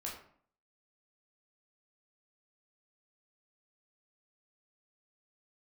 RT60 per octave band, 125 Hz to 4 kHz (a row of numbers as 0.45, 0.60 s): 0.60, 0.65, 0.55, 0.55, 0.45, 0.35 s